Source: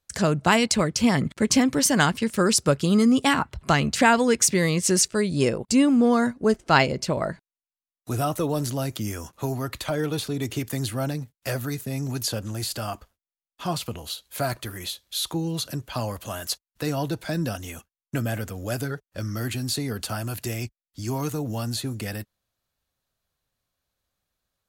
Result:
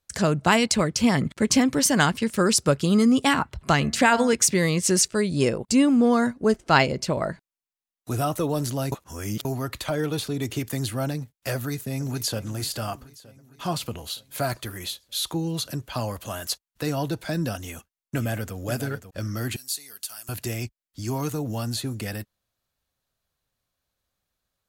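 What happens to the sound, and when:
3.76–4.33 de-hum 114.6 Hz, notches 19
8.92–9.45 reverse
11.54–12.46 echo throw 0.46 s, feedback 60%, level -16.5 dB
17.61–18.56 echo throw 0.54 s, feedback 15%, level -10.5 dB
19.56–20.29 differentiator

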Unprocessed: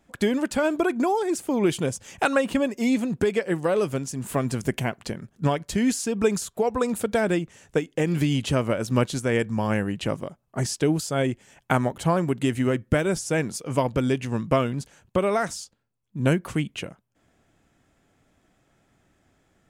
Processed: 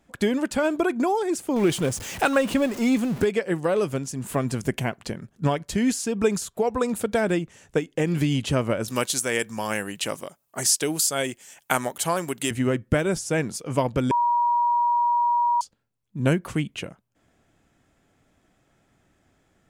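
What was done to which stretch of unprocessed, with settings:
1.56–3.25 zero-crossing step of -31.5 dBFS
8.88–12.51 RIAA curve recording
14.11–15.61 bleep 956 Hz -18 dBFS

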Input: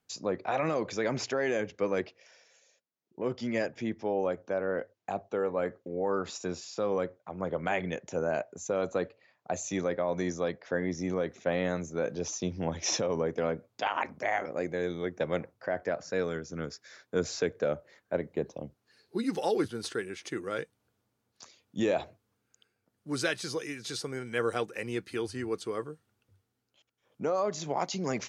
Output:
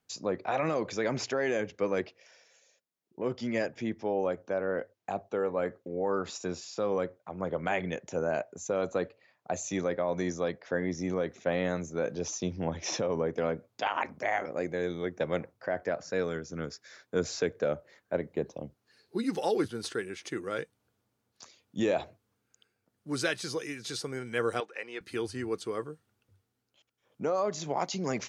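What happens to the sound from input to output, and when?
12.56–13.34 high shelf 5500 Hz -9.5 dB
24.6–25.01 BPF 570–3900 Hz

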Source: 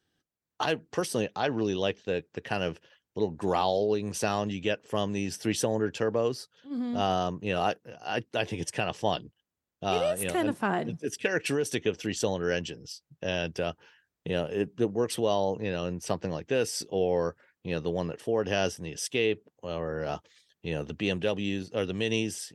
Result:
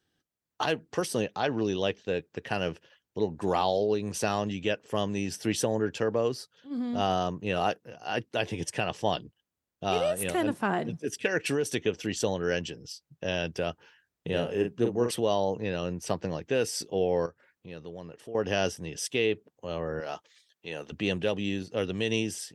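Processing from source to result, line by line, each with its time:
14.28–15.11 doubler 42 ms -6 dB
17.26–18.35 compressor 1.5:1, threshold -58 dBFS
20–20.92 HPF 660 Hz 6 dB/oct

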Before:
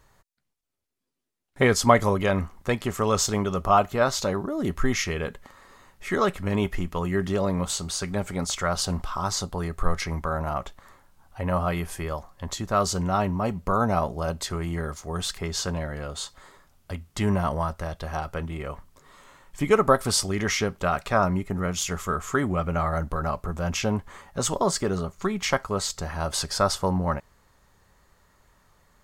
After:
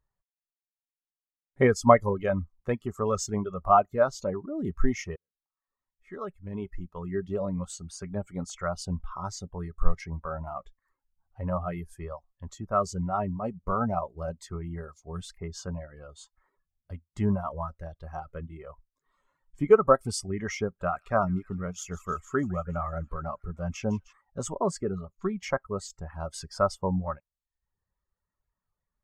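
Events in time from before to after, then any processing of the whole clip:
5.16–7.63 fade in
20.64–24.13 thin delay 0.153 s, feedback 65%, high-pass 1700 Hz, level -8 dB
whole clip: reverb removal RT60 0.69 s; dynamic EQ 3900 Hz, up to -5 dB, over -46 dBFS, Q 2.2; spectral expander 1.5:1

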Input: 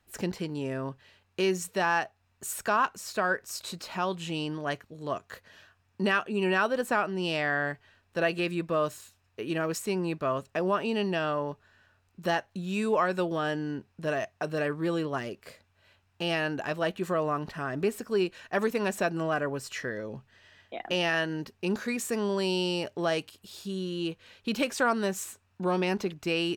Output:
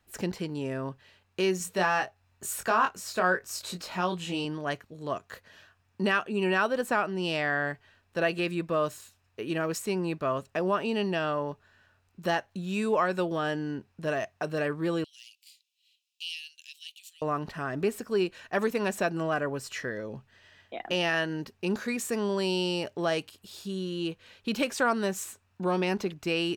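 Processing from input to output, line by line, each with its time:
1.58–4.45 doubler 22 ms -5 dB
15.04–17.22 steep high-pass 2800 Hz 48 dB/oct

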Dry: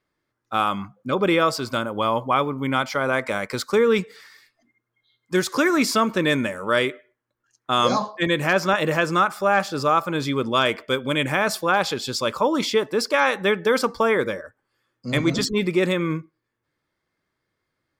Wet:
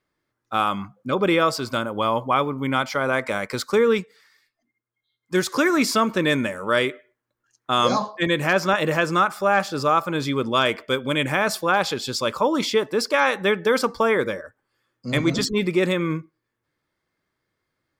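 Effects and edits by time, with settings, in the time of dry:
3.91–5.37 dip -10 dB, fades 0.16 s

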